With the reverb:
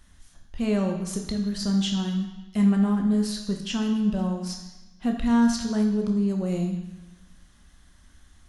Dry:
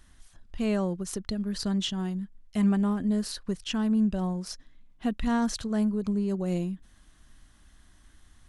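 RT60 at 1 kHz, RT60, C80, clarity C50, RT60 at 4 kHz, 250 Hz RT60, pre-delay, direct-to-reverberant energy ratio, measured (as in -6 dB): 1.1 s, 1.1 s, 8.0 dB, 6.0 dB, 1.1 s, 1.0 s, 3 ms, 2.5 dB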